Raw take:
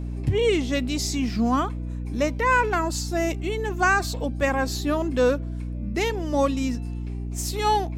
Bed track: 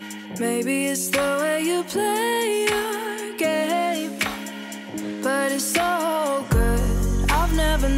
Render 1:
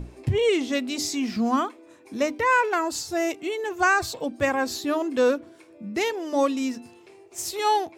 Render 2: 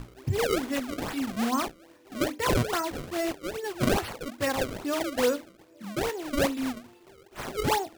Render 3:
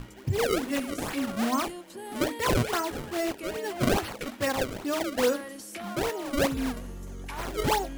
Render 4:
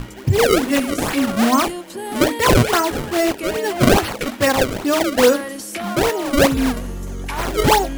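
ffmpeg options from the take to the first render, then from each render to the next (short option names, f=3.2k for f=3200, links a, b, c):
-af "bandreject=f=60:t=h:w=6,bandreject=f=120:t=h:w=6,bandreject=f=180:t=h:w=6,bandreject=f=240:t=h:w=6,bandreject=f=300:t=h:w=6"
-af "flanger=delay=7.2:depth=6.3:regen=-65:speed=1.4:shape=triangular,acrusher=samples=29:mix=1:aa=0.000001:lfo=1:lforange=46.4:lforate=2.4"
-filter_complex "[1:a]volume=-18.5dB[a];[0:a][a]amix=inputs=2:normalize=0"
-af "volume=11.5dB"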